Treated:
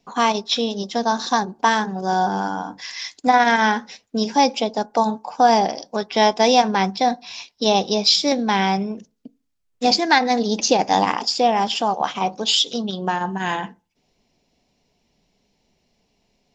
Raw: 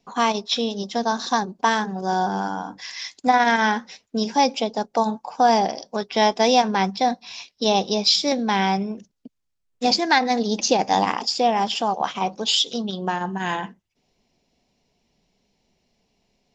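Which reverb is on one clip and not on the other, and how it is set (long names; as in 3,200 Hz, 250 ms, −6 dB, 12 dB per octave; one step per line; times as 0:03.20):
feedback delay network reverb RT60 0.35 s, low-frequency decay 1.05×, high-frequency decay 0.3×, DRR 19.5 dB
level +2 dB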